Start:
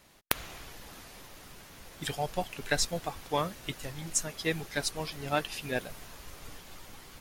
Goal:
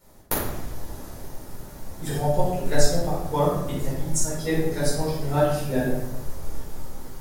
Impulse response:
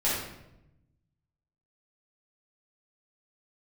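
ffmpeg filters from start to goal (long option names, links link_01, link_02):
-filter_complex "[0:a]equalizer=frequency=2700:width=0.71:gain=-15[link_01];[1:a]atrim=start_sample=2205[link_02];[link_01][link_02]afir=irnorm=-1:irlink=0"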